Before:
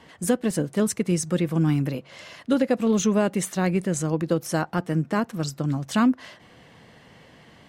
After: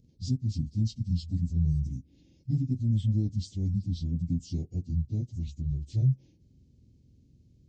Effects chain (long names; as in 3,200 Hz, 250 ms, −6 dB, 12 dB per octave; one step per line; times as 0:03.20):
phase-vocoder pitch shift without resampling −11.5 semitones
Chebyshev band-stop filter 190–7,200 Hz, order 2
level −3.5 dB